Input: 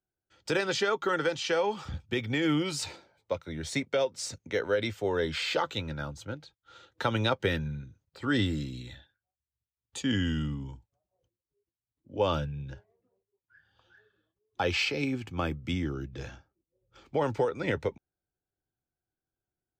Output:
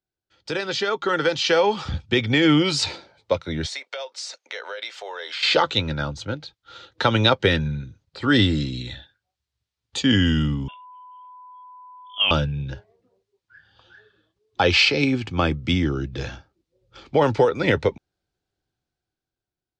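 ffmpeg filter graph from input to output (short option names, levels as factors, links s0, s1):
-filter_complex "[0:a]asettb=1/sr,asplit=3[s0][s1][s2];[s0]atrim=end=3.664[s3];[s1]atrim=start=3.66:end=5.43,asetpts=PTS-STARTPTS,afade=t=in:d=0.004:c=qsin,afade=t=out:st=1.766:d=0.004:c=qsin,highpass=f=600:w=0.5412,highpass=f=600:w=1.3066,acompressor=threshold=0.00891:ratio=4:attack=3.2:release=140:knee=1:detection=peak[s4];[s2]atrim=start=5.426[s5];[s3][s4]acrossfade=d=0.004:c1=hsin:c2=qsin[s6];[s6][s5]acrossfade=d=0.004:c1=qsin:c2=hsin,asettb=1/sr,asplit=3[s7][s8][s9];[s7]atrim=end=10.684[s10];[s8]atrim=start=10.68:end=12.31,asetpts=PTS-STARTPTS,afade=t=in:d=0.004:c=qsin,afade=t=out:st=1.626:d=0.004:c=qsin,highpass=810,aeval=exprs='val(0)+0.00282*sin(2*PI*2700*n/s)':c=same,lowpass=f=3100:t=q:w=0.5098,lowpass=f=3100:t=q:w=0.6013,lowpass=f=3100:t=q:w=0.9,lowpass=f=3100:t=q:w=2.563,afreqshift=-3700[s11];[s9]atrim=start=12.306[s12];[s10][s11]acrossfade=d=0.004:c1=hsin:c2=qsin[s13];[s13][s12]acrossfade=d=0.004:c1=qsin:c2=hsin,lowpass=6100,equalizer=f=4200:t=o:w=0.89:g=5.5,dynaudnorm=f=210:g=11:m=3.16"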